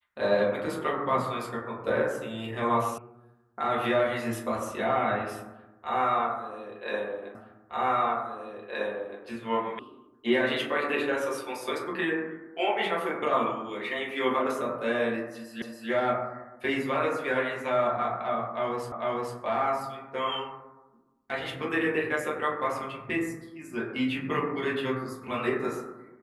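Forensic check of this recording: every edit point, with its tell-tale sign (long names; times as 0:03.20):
0:02.98: cut off before it has died away
0:07.35: the same again, the last 1.87 s
0:09.79: cut off before it has died away
0:15.62: the same again, the last 0.28 s
0:18.92: the same again, the last 0.45 s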